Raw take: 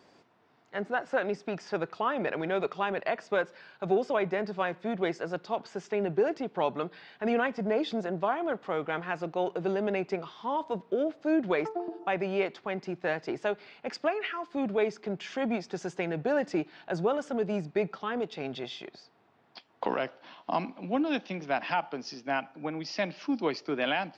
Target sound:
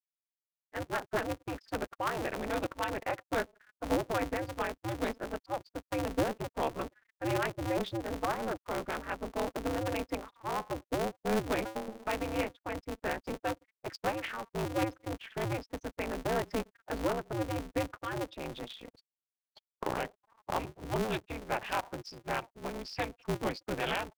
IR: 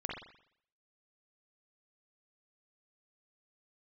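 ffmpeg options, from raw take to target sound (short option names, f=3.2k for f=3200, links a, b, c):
-af "afftfilt=real='re*gte(hypot(re,im),0.0158)':imag='im*gte(hypot(re,im),0.0158)':win_size=1024:overlap=0.75,aeval=exprs='val(0)*sgn(sin(2*PI*110*n/s))':c=same,volume=-4dB"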